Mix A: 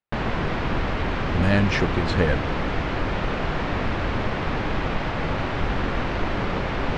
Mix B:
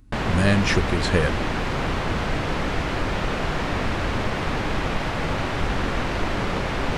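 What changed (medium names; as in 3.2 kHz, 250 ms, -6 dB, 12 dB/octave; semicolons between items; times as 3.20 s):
speech: entry -1.05 s; master: remove distance through air 130 m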